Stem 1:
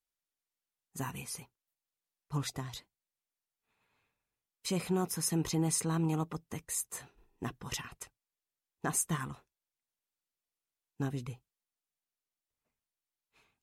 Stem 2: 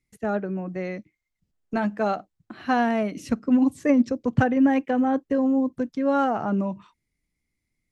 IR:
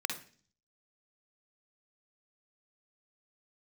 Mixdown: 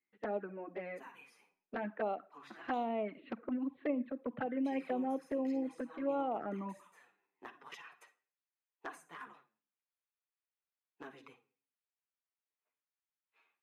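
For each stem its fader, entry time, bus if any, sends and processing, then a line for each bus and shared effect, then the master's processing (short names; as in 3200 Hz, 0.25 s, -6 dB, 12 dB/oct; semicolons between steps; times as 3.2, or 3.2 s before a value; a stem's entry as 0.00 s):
-3.5 dB, 0.00 s, send -9 dB, HPF 540 Hz 6 dB/oct; high shelf 5000 Hz +7.5 dB; compressor 4:1, threshold -35 dBFS, peak gain reduction 12 dB; auto duck -12 dB, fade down 1.35 s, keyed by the second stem
-6.0 dB, 0.00 s, send -16 dB, low shelf 100 Hz -9 dB; compressor 5:1, threshold -23 dBFS, peak gain reduction 7.5 dB; steep low-pass 4100 Hz 96 dB/oct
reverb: on, RT60 0.40 s, pre-delay 47 ms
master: three-band isolator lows -22 dB, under 240 Hz, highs -23 dB, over 2900 Hz; envelope flanger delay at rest 11.2 ms, full sweep at -29.5 dBFS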